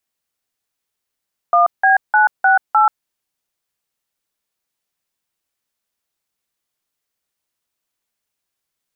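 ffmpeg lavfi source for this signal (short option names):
-f lavfi -i "aevalsrc='0.266*clip(min(mod(t,0.304),0.134-mod(t,0.304))/0.002,0,1)*(eq(floor(t/0.304),0)*(sin(2*PI*697*mod(t,0.304))+sin(2*PI*1209*mod(t,0.304)))+eq(floor(t/0.304),1)*(sin(2*PI*770*mod(t,0.304))+sin(2*PI*1633*mod(t,0.304)))+eq(floor(t/0.304),2)*(sin(2*PI*852*mod(t,0.304))+sin(2*PI*1477*mod(t,0.304)))+eq(floor(t/0.304),3)*(sin(2*PI*770*mod(t,0.304))+sin(2*PI*1477*mod(t,0.304)))+eq(floor(t/0.304),4)*(sin(2*PI*852*mod(t,0.304))+sin(2*PI*1336*mod(t,0.304))))':d=1.52:s=44100"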